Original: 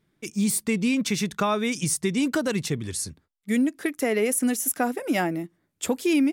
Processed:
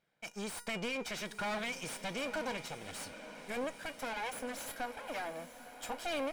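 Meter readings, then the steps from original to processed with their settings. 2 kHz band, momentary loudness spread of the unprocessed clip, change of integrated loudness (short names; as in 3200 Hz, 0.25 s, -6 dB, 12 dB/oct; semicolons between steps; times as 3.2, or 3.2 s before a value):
-8.5 dB, 9 LU, -14.5 dB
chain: minimum comb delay 1.3 ms; resonator 480 Hz, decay 0.25 s, harmonics all, mix 60%; random-step tremolo; overdrive pedal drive 22 dB, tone 3200 Hz, clips at -20 dBFS; diffused feedback echo 0.901 s, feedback 55%, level -12 dB; gain -8.5 dB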